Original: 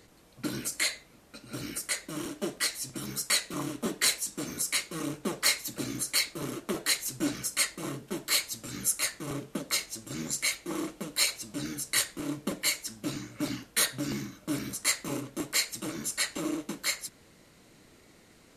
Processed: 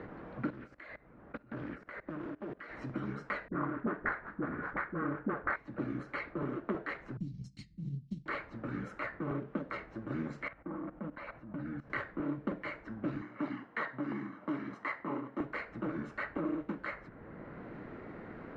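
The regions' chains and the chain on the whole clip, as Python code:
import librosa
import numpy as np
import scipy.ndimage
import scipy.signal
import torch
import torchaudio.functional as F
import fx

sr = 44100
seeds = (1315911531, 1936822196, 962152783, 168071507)

y = fx.chain(x, sr, fx.level_steps(step_db=23),
    fx.doppler_dist(depth_ms=0.35), at=(0.5, 2.77))
y = fx.chain(y, sr, fx.median_filter(points=15),
    fx.peak_eq(hz=1600.0, db=11.5, octaves=1.2),
    fx.dispersion(late='highs', ms=44.0, hz=410.0), at=(3.48, 5.56))
y = fx.chain(y, sr, fx.ellip_bandstop(low_hz=160.0, high_hz=4700.0, order=3, stop_db=60),
    fx.transient(attack_db=7, sustain_db=-6), at=(7.17, 8.26))
y = fx.chain(y, sr, fx.lowpass(hz=1300.0, slope=6),
    fx.peak_eq(hz=400.0, db=-13.0, octaves=0.33),
    fx.level_steps(step_db=15), at=(10.48, 11.9))
y = fx.chain(y, sr, fx.highpass(hz=290.0, slope=12),
    fx.comb(ms=1.0, depth=0.36), at=(13.21, 15.4))
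y = scipy.signal.sosfilt(scipy.signal.cheby1(3, 1.0, 1600.0, 'lowpass', fs=sr, output='sos'), y)
y = fx.band_squash(y, sr, depth_pct=70)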